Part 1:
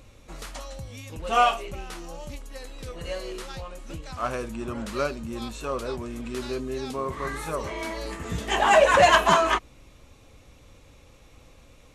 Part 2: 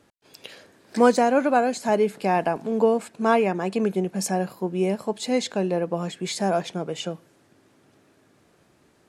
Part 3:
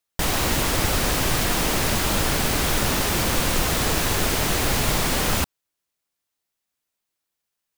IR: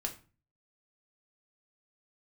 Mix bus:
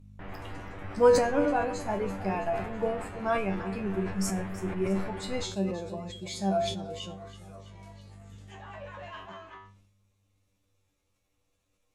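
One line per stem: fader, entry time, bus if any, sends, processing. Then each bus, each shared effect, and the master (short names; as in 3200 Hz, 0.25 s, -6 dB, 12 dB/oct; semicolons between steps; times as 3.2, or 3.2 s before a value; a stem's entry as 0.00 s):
-17.5 dB, 0.00 s, send -17.5 dB, no echo send, high shelf 6700 Hz +10.5 dB; soft clip -10.5 dBFS, distortion -19 dB; treble ducked by the level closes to 2700 Hz, closed at -19 dBFS
+0.5 dB, 0.00 s, send -11.5 dB, echo send -13 dB, per-bin expansion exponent 1.5; hum 50 Hz, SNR 18 dB
-11.0 dB, 0.00 s, send -17.5 dB, no echo send, LPF 2200 Hz 24 dB/oct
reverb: on, RT60 0.35 s, pre-delay 3 ms
echo: feedback echo 0.33 s, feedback 56%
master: resonator 97 Hz, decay 0.29 s, harmonics all, mix 90%; sustainer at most 61 dB/s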